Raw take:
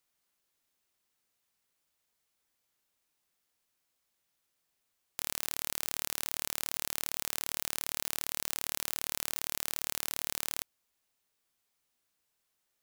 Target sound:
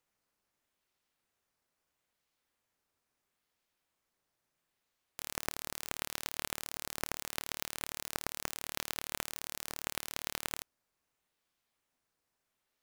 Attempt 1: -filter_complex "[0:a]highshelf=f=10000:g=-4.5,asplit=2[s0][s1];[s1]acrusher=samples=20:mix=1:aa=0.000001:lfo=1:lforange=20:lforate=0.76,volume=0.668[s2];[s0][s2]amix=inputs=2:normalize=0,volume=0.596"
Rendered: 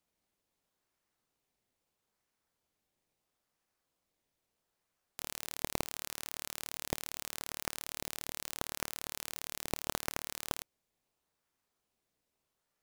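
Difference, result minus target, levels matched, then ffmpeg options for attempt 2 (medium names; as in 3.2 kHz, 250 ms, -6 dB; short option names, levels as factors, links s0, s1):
decimation with a swept rate: distortion +8 dB
-filter_complex "[0:a]highshelf=f=10000:g=-4.5,asplit=2[s0][s1];[s1]acrusher=samples=8:mix=1:aa=0.000001:lfo=1:lforange=8:lforate=0.76,volume=0.668[s2];[s0][s2]amix=inputs=2:normalize=0,volume=0.596"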